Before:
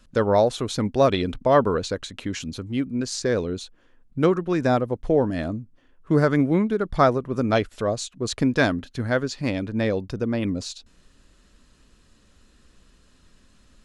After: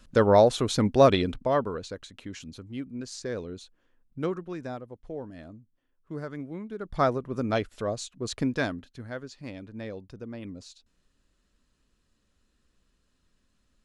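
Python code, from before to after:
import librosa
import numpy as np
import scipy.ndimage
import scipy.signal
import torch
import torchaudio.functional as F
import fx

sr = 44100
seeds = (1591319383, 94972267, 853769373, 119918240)

y = fx.gain(x, sr, db=fx.line((1.1, 0.5), (1.71, -10.5), (4.37, -10.5), (4.78, -17.5), (6.6, -17.5), (7.03, -6.0), (8.45, -6.0), (9.07, -14.5)))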